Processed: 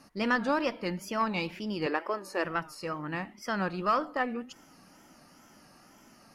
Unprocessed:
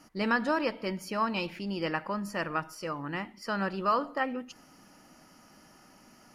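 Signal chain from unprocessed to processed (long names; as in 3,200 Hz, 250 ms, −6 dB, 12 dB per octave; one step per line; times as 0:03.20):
tape wow and flutter 120 cents
harmonic generator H 4 −27 dB, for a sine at −15.5 dBFS
0:01.86–0:02.45: low shelf with overshoot 250 Hz −13 dB, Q 3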